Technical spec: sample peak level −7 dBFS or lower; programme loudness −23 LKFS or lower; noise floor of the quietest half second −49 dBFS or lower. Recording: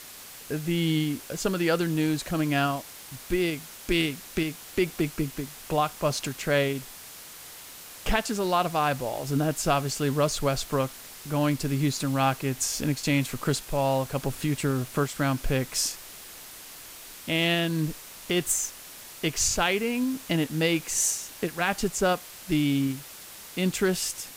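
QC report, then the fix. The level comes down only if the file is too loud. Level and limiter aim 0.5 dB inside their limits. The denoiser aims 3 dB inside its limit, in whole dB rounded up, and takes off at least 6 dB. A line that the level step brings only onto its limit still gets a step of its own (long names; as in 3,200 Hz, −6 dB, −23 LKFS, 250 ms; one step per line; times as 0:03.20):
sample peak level −11.5 dBFS: in spec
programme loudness −27.0 LKFS: in spec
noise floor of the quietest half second −44 dBFS: out of spec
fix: broadband denoise 8 dB, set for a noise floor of −44 dBFS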